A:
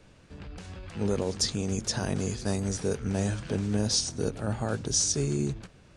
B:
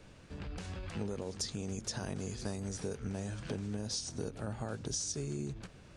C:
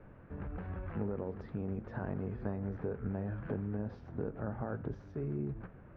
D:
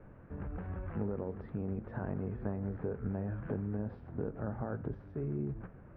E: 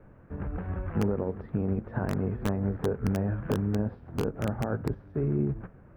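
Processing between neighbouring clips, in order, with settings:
compressor 6:1, threshold -35 dBFS, peak gain reduction 12.5 dB
flange 0.35 Hz, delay 7.6 ms, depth 7.6 ms, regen -85%; LPF 1700 Hz 24 dB/oct; gain +6 dB
air absorption 300 m; gain +1 dB
in parallel at -6.5 dB: wrapped overs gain 25 dB; on the sum: upward expander 1.5:1, over -48 dBFS; gain +6.5 dB

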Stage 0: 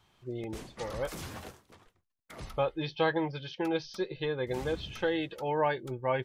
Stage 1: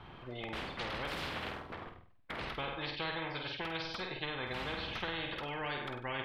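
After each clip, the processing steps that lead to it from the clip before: air absorption 440 m; flutter echo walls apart 8.4 m, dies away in 0.43 s; spectral compressor 4:1; gain -5 dB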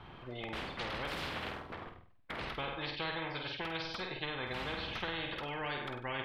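nothing audible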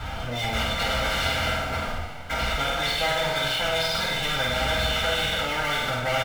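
comb 1.4 ms, depth 95%; power-law curve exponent 0.5; two-slope reverb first 0.2 s, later 3 s, from -18 dB, DRR -6 dB; gain -2 dB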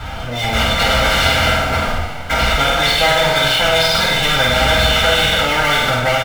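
AGC gain up to 5.5 dB; gain +5.5 dB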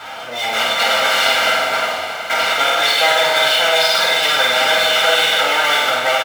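HPF 470 Hz 12 dB/oct; feedback echo 0.366 s, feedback 59%, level -11.5 dB

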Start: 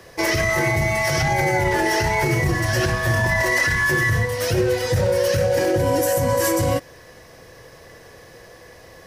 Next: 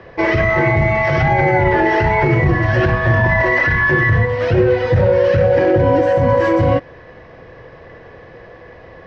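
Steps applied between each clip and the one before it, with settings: Bessel low-pass 2100 Hz, order 4; gain +6.5 dB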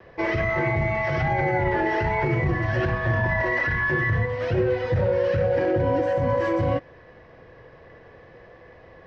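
vibrato 0.5 Hz 13 cents; gain -9 dB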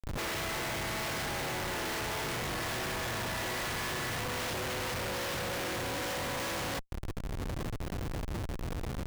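spectral contrast lowered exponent 0.34; compressor 12:1, threshold -30 dBFS, peak gain reduction 13 dB; Schmitt trigger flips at -40.5 dBFS

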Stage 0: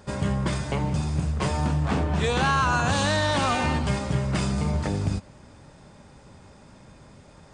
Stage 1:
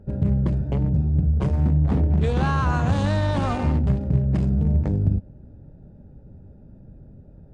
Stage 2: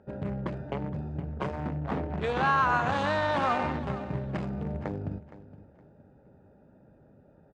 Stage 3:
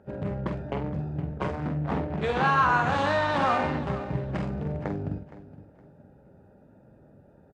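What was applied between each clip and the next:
Wiener smoothing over 41 samples; tilt -2.5 dB/oct; gain -2 dB
band-pass 1400 Hz, Q 0.69; feedback echo 0.466 s, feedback 27%, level -16 dB; gain +3.5 dB
doubler 47 ms -7 dB; gain +2 dB; Vorbis 64 kbps 32000 Hz

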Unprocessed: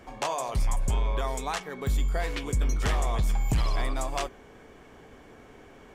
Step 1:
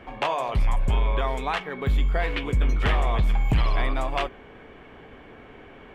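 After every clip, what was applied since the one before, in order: resonant high shelf 4300 Hz -13.5 dB, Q 1.5; gain +4 dB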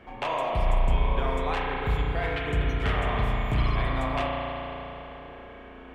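spring tank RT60 3.6 s, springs 34 ms, chirp 45 ms, DRR -3 dB; gain -5.5 dB

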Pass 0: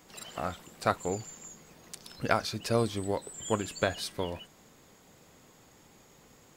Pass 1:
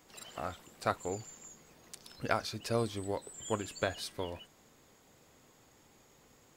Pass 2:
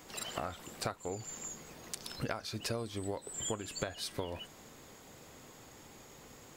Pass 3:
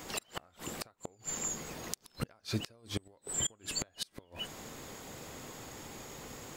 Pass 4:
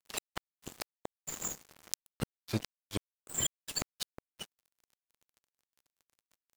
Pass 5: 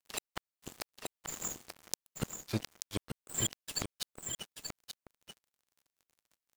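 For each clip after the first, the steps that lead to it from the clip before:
bell 180 Hz -5 dB 0.33 oct; gain -4.5 dB
compressor 16:1, threshold -42 dBFS, peak gain reduction 18.5 dB; gain +8.5 dB
flipped gate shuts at -29 dBFS, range -31 dB; gain +7.5 dB
crossover distortion -37.5 dBFS; gain +4.5 dB
echo 0.883 s -6.5 dB; gain -1 dB

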